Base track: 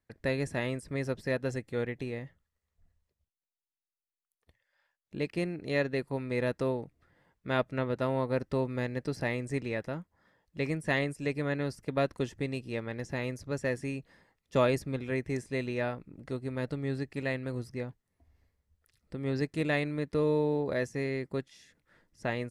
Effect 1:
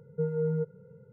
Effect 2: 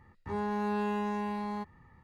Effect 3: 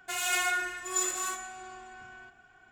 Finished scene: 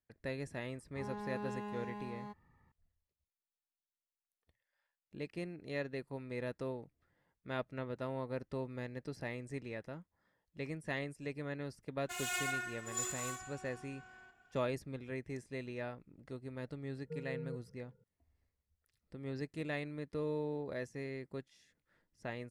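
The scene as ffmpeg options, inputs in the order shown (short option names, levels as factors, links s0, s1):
-filter_complex "[0:a]volume=0.316[s0];[2:a]atrim=end=2.03,asetpts=PTS-STARTPTS,volume=0.282,afade=t=in:d=0.004:c=hsin,afade=t=out:st=2.026:d=0.004:c=hsin,adelay=690[s1];[3:a]atrim=end=2.71,asetpts=PTS-STARTPTS,volume=0.355,afade=t=in:d=0.004:c=hsin,afade=t=out:st=2.706:d=0.004:c=hsin,adelay=12010[s2];[1:a]atrim=end=1.12,asetpts=PTS-STARTPTS,volume=0.188,afade=t=in:d=0.004:c=hsin,afade=t=out:st=1.116:d=0.004:c=hsin,adelay=16920[s3];[s0][s1][s2][s3]amix=inputs=4:normalize=0"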